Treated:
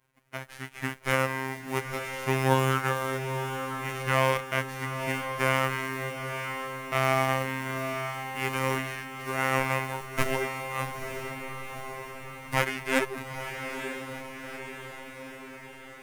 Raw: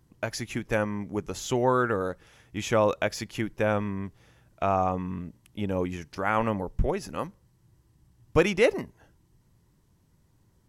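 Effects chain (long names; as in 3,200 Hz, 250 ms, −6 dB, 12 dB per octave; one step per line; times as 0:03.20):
spectral envelope flattened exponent 0.3
high shelf with overshoot 3,500 Hz −10 dB, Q 1.5
automatic gain control
phase-vocoder stretch with locked phases 1.5×
phases set to zero 132 Hz
formants moved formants −2 semitones
on a send: feedback delay with all-pass diffusion 906 ms, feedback 61%, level −7 dB
on the sum: level −6 dB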